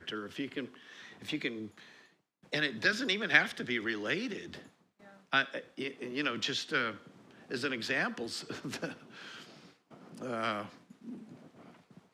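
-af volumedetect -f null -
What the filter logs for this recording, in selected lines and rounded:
mean_volume: -36.9 dB
max_volume: -7.9 dB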